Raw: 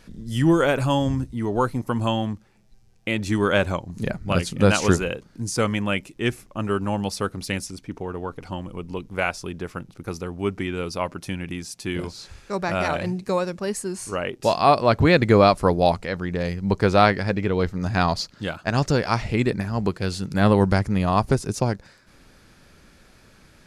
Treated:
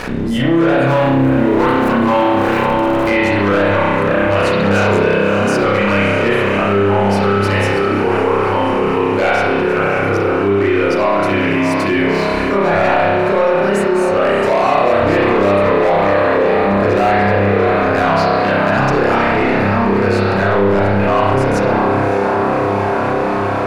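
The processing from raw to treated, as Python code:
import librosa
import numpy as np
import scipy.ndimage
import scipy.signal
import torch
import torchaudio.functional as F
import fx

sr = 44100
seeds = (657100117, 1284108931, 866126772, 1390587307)

y = fx.zero_step(x, sr, step_db=-29.5, at=(0.87, 3.1))
y = fx.echo_diffused(y, sr, ms=612, feedback_pct=67, wet_db=-13.5)
y = 10.0 ** (-19.5 / 20.0) * np.tanh(y / 10.0 ** (-19.5 / 20.0))
y = fx.bass_treble(y, sr, bass_db=-12, treble_db=-12)
y = fx.notch(y, sr, hz=3300.0, q=8.3)
y = fx.leveller(y, sr, passes=2)
y = fx.rev_spring(y, sr, rt60_s=1.2, pass_ms=(30,), chirp_ms=40, drr_db=-9.5)
y = fx.env_flatten(y, sr, amount_pct=70)
y = y * librosa.db_to_amplitude(-3.5)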